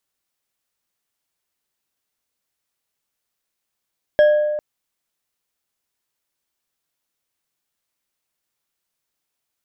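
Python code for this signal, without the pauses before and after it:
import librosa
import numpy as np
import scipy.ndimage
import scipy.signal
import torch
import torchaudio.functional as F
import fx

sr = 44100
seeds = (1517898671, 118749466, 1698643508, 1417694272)

y = fx.strike_glass(sr, length_s=0.4, level_db=-8.0, body='bar', hz=600.0, decay_s=1.7, tilt_db=12, modes=5)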